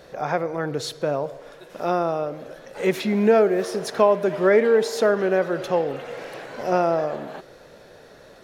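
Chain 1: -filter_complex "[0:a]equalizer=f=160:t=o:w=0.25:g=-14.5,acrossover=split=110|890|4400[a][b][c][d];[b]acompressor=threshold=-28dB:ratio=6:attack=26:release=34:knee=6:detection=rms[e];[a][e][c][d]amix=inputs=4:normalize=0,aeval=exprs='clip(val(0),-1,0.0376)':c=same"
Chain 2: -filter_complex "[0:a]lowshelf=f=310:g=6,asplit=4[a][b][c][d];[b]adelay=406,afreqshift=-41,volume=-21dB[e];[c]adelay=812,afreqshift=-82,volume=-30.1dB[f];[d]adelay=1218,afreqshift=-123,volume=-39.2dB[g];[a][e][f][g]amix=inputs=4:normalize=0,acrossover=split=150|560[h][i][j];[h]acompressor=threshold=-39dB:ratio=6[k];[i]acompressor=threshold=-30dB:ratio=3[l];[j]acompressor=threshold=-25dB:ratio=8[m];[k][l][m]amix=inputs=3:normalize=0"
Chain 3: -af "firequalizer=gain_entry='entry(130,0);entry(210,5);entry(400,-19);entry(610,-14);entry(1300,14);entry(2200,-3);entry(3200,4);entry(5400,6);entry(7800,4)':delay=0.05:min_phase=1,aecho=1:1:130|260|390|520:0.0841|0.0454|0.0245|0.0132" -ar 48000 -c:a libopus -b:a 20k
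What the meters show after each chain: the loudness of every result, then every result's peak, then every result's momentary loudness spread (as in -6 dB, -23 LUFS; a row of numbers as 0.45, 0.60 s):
-29.5, -27.0, -23.0 LUFS; -12.5, -11.5, -4.0 dBFS; 15, 15, 16 LU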